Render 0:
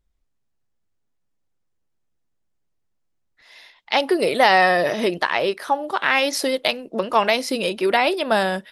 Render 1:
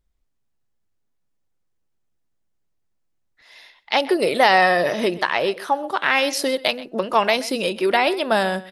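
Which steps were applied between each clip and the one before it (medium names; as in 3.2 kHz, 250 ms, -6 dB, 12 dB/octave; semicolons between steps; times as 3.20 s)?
echo from a far wall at 22 m, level -18 dB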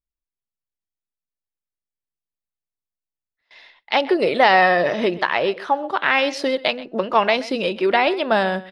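low-pass 3.9 kHz 12 dB/octave; gate with hold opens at -41 dBFS; trim +1 dB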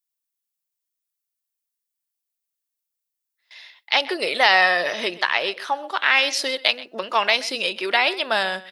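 tilt EQ +4.5 dB/octave; trim -3 dB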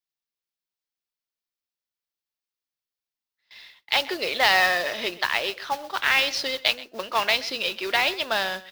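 modulation noise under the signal 10 dB; resonant high shelf 6.3 kHz -7.5 dB, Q 1.5; trim -4 dB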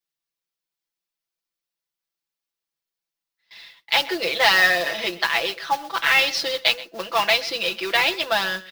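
comb 6 ms, depth 100%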